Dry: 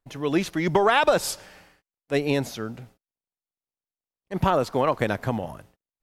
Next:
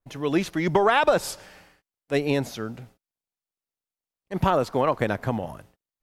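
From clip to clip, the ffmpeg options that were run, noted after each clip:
ffmpeg -i in.wav -af "adynamicequalizer=threshold=0.0158:dfrequency=2400:dqfactor=0.7:tfrequency=2400:tqfactor=0.7:attack=5:release=100:ratio=0.375:range=2.5:mode=cutabove:tftype=highshelf" out.wav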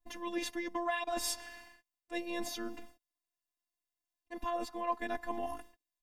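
ffmpeg -i in.wav -af "areverse,acompressor=threshold=-28dB:ratio=20,areverse,afftfilt=real='hypot(re,im)*cos(PI*b)':imag='0':win_size=512:overlap=0.75,aecho=1:1:4:0.79" out.wav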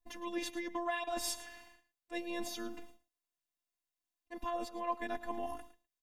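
ffmpeg -i in.wav -af "aecho=1:1:110:0.158,volume=-2dB" out.wav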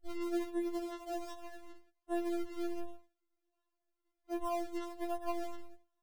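ffmpeg -i in.wav -af "acompressor=threshold=-47dB:ratio=5,acrusher=samples=37:mix=1:aa=0.000001:lfo=1:lforange=37:lforate=1.3,afftfilt=real='re*4*eq(mod(b,16),0)':imag='im*4*eq(mod(b,16),0)':win_size=2048:overlap=0.75,volume=6dB" out.wav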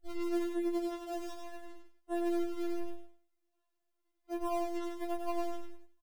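ffmpeg -i in.wav -af "aecho=1:1:99|198|297:0.562|0.101|0.0182" out.wav

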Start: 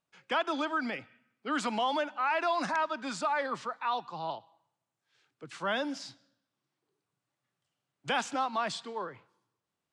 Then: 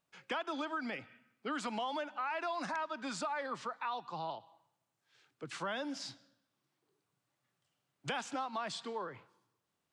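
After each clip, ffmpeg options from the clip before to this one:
ffmpeg -i in.wav -af "acompressor=threshold=-40dB:ratio=3,volume=2dB" out.wav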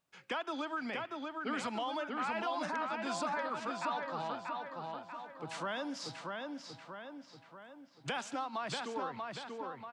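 ffmpeg -i in.wav -filter_complex "[0:a]asplit=2[link_01][link_02];[link_02]adelay=637,lowpass=frequency=3900:poles=1,volume=-3dB,asplit=2[link_03][link_04];[link_04]adelay=637,lowpass=frequency=3900:poles=1,volume=0.53,asplit=2[link_05][link_06];[link_06]adelay=637,lowpass=frequency=3900:poles=1,volume=0.53,asplit=2[link_07][link_08];[link_08]adelay=637,lowpass=frequency=3900:poles=1,volume=0.53,asplit=2[link_09][link_10];[link_10]adelay=637,lowpass=frequency=3900:poles=1,volume=0.53,asplit=2[link_11][link_12];[link_12]adelay=637,lowpass=frequency=3900:poles=1,volume=0.53,asplit=2[link_13][link_14];[link_14]adelay=637,lowpass=frequency=3900:poles=1,volume=0.53[link_15];[link_01][link_03][link_05][link_07][link_09][link_11][link_13][link_15]amix=inputs=8:normalize=0" out.wav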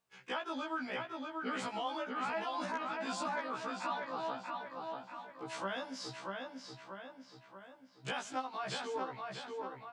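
ffmpeg -i in.wav -af "afftfilt=real='re*1.73*eq(mod(b,3),0)':imag='im*1.73*eq(mod(b,3),0)':win_size=2048:overlap=0.75,volume=1.5dB" out.wav

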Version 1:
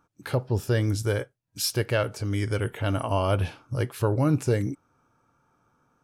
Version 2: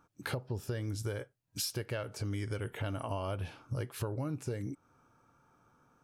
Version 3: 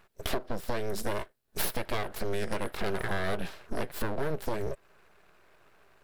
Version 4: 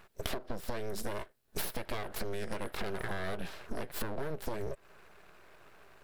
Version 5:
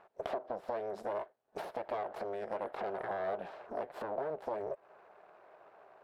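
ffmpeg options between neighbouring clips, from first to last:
ffmpeg -i in.wav -af "acompressor=threshold=-33dB:ratio=10" out.wav
ffmpeg -i in.wav -af "aeval=exprs='abs(val(0))':channel_layout=same,equalizer=frequency=250:width_type=o:width=0.33:gain=-8,equalizer=frequency=400:width_type=o:width=0.33:gain=5,equalizer=frequency=630:width_type=o:width=0.33:gain=5,equalizer=frequency=1600:width_type=o:width=0.33:gain=4,equalizer=frequency=4000:width_type=o:width=0.33:gain=3,equalizer=frequency=6300:width_type=o:width=0.33:gain=-4,equalizer=frequency=12500:width_type=o:width=0.33:gain=5,volume=7dB" out.wav
ffmpeg -i in.wav -af "acompressor=threshold=-35dB:ratio=6,volume=3.5dB" out.wav
ffmpeg -i in.wav -af "bandpass=frequency=700:width_type=q:width=2.1:csg=0,volume=7dB" out.wav

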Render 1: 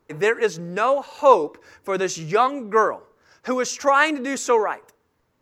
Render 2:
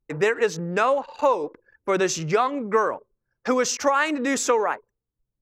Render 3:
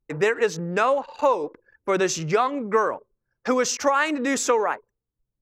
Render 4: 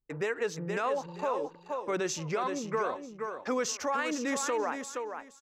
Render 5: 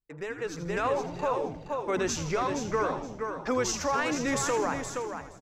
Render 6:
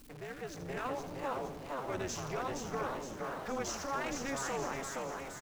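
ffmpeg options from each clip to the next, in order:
ffmpeg -i in.wav -af "anlmdn=0.631,acompressor=threshold=-19dB:ratio=12,volume=3dB" out.wav
ffmpeg -i in.wav -af anull out.wav
ffmpeg -i in.wav -af "aecho=1:1:470|940|1410:0.398|0.0756|0.0144,alimiter=limit=-13.5dB:level=0:latency=1:release=29,volume=-8dB" out.wav
ffmpeg -i in.wav -filter_complex "[0:a]dynaudnorm=framelen=370:gausssize=3:maxgain=8dB,asplit=9[link_01][link_02][link_03][link_04][link_05][link_06][link_07][link_08][link_09];[link_02]adelay=81,afreqshift=-140,volume=-10.5dB[link_10];[link_03]adelay=162,afreqshift=-280,volume=-14.7dB[link_11];[link_04]adelay=243,afreqshift=-420,volume=-18.8dB[link_12];[link_05]adelay=324,afreqshift=-560,volume=-23dB[link_13];[link_06]adelay=405,afreqshift=-700,volume=-27.1dB[link_14];[link_07]adelay=486,afreqshift=-840,volume=-31.3dB[link_15];[link_08]adelay=567,afreqshift=-980,volume=-35.4dB[link_16];[link_09]adelay=648,afreqshift=-1120,volume=-39.6dB[link_17];[link_01][link_10][link_11][link_12][link_13][link_14][link_15][link_16][link_17]amix=inputs=9:normalize=0,volume=-5.5dB" out.wav
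ffmpeg -i in.wav -filter_complex "[0:a]aeval=exprs='val(0)+0.5*0.0141*sgn(val(0))':channel_layout=same,tremolo=f=270:d=0.919,asplit=7[link_01][link_02][link_03][link_04][link_05][link_06][link_07];[link_02]adelay=466,afreqshift=130,volume=-6.5dB[link_08];[link_03]adelay=932,afreqshift=260,volume=-12.3dB[link_09];[link_04]adelay=1398,afreqshift=390,volume=-18.2dB[link_10];[link_05]adelay=1864,afreqshift=520,volume=-24dB[link_11];[link_06]adelay=2330,afreqshift=650,volume=-29.9dB[link_12];[link_07]adelay=2796,afreqshift=780,volume=-35.7dB[link_13];[link_01][link_08][link_09][link_10][link_11][link_12][link_13]amix=inputs=7:normalize=0,volume=-7dB" out.wav

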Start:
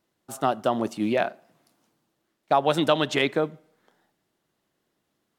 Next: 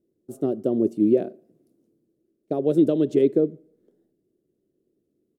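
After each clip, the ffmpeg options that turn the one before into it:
ffmpeg -i in.wav -af "firequalizer=gain_entry='entry(160,0);entry(380,9);entry(850,-25);entry(9600,-12)':delay=0.05:min_phase=1,volume=1.5dB" out.wav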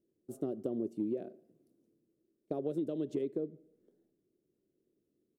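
ffmpeg -i in.wav -af "acompressor=threshold=-25dB:ratio=6,volume=-7dB" out.wav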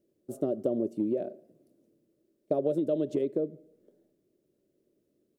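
ffmpeg -i in.wav -af "equalizer=frequency=590:width_type=o:width=0.29:gain=11,volume=5dB" out.wav

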